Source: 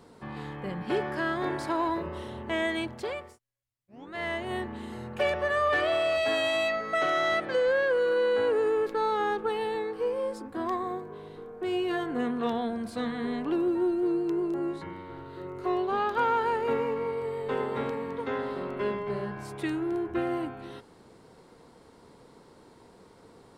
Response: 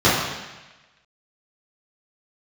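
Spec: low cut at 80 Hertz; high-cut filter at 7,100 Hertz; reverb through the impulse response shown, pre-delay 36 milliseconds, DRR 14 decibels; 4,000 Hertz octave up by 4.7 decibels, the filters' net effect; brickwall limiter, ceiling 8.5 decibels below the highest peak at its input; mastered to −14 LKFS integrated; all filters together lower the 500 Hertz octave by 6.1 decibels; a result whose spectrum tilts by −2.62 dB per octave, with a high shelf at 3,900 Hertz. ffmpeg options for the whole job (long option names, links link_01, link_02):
-filter_complex "[0:a]highpass=80,lowpass=7100,equalizer=frequency=500:width_type=o:gain=-8,highshelf=frequency=3900:gain=4.5,equalizer=frequency=4000:width_type=o:gain=4,alimiter=level_in=1dB:limit=-24dB:level=0:latency=1,volume=-1dB,asplit=2[link_01][link_02];[1:a]atrim=start_sample=2205,adelay=36[link_03];[link_02][link_03]afir=irnorm=-1:irlink=0,volume=-38dB[link_04];[link_01][link_04]amix=inputs=2:normalize=0,volume=20dB"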